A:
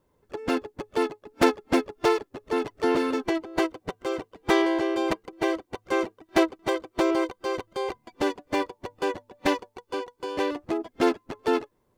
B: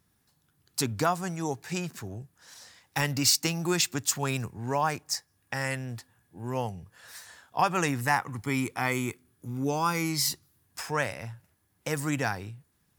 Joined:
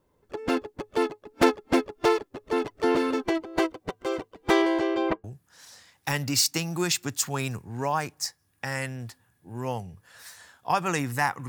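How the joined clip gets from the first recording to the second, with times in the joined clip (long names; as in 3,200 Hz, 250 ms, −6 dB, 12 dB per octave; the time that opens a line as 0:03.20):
A
0:04.79–0:05.24: low-pass filter 10,000 Hz → 1,300 Hz
0:05.24: continue with B from 0:02.13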